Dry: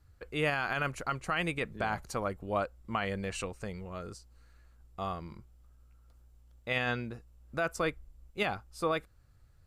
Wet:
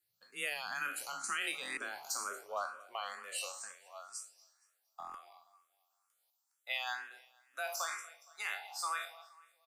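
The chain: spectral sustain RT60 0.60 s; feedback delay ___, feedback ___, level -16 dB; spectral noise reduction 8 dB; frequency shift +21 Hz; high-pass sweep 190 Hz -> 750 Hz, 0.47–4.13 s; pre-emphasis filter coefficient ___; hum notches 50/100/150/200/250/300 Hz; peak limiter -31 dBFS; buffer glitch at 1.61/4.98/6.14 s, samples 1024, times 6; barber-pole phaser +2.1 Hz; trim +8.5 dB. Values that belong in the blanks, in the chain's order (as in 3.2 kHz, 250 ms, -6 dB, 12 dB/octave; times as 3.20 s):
233 ms, 46%, 0.97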